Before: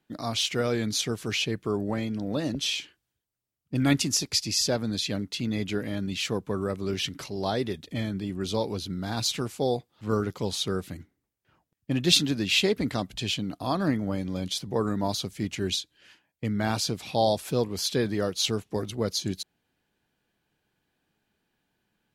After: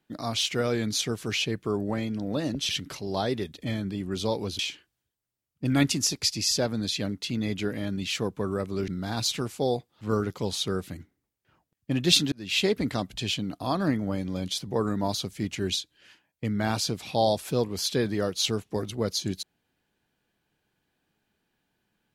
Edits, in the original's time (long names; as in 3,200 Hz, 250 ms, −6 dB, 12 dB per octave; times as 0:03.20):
0:06.98–0:08.88: move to 0:02.69
0:12.32–0:12.66: fade in